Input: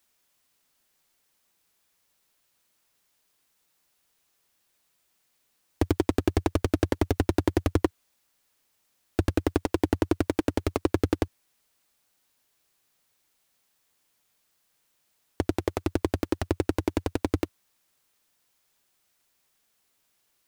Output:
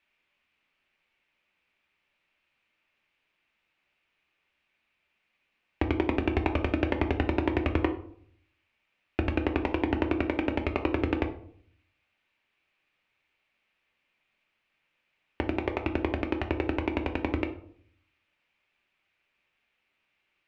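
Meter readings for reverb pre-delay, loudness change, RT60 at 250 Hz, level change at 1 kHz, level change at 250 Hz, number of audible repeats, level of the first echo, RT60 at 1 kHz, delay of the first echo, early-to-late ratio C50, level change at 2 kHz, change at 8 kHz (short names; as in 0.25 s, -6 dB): 3 ms, -1.5 dB, 0.80 s, +0.5 dB, -2.0 dB, none, none, 0.55 s, none, 11.0 dB, +4.0 dB, under -20 dB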